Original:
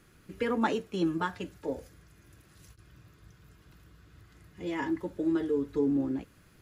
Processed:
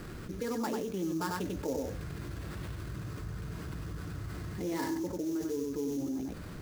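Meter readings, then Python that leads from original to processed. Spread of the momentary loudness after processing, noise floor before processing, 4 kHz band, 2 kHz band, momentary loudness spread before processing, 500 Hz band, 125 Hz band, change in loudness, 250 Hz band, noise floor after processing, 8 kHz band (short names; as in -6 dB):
7 LU, -61 dBFS, -1.0 dB, -4.5 dB, 10 LU, -3.0 dB, +5.0 dB, -5.0 dB, -3.5 dB, -43 dBFS, n/a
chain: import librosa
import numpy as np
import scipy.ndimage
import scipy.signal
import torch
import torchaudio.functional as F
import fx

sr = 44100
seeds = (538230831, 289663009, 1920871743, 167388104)

p1 = fx.high_shelf(x, sr, hz=2200.0, db=-11.0)
p2 = fx.rider(p1, sr, range_db=10, speed_s=0.5)
p3 = fx.sample_hold(p2, sr, seeds[0], rate_hz=6300.0, jitter_pct=20)
p4 = p3 + fx.echo_single(p3, sr, ms=95, db=-5.5, dry=0)
p5 = fx.env_flatten(p4, sr, amount_pct=70)
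y = F.gain(torch.from_numpy(p5), -8.0).numpy()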